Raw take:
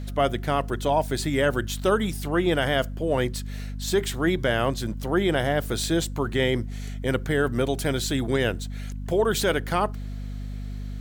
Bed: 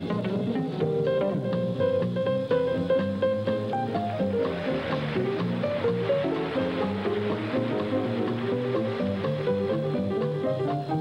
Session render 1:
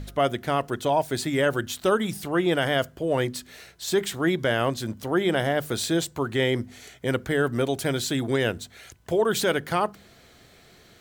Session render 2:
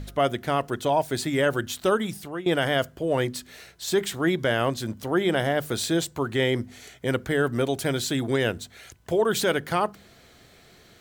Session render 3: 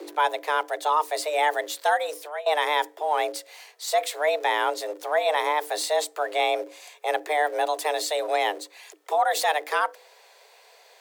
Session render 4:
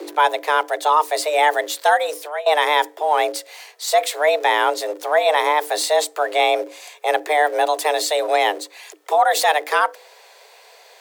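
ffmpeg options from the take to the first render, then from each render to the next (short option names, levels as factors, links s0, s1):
-af "bandreject=f=50:t=h:w=4,bandreject=f=100:t=h:w=4,bandreject=f=150:t=h:w=4,bandreject=f=200:t=h:w=4,bandreject=f=250:t=h:w=4"
-filter_complex "[0:a]asplit=2[s0][s1];[s0]atrim=end=2.46,asetpts=PTS-STARTPTS,afade=t=out:st=1.76:d=0.7:c=qsin:silence=0.177828[s2];[s1]atrim=start=2.46,asetpts=PTS-STARTPTS,afade=t=in:d=0.004:c=hsin:silence=0.177828[s3];[s2][s3]concat=n=2:v=0:a=1"
-filter_complex "[0:a]acrossover=split=120[s0][s1];[s0]acrusher=bits=5:dc=4:mix=0:aa=0.000001[s2];[s2][s1]amix=inputs=2:normalize=0,afreqshift=300"
-af "volume=2.11"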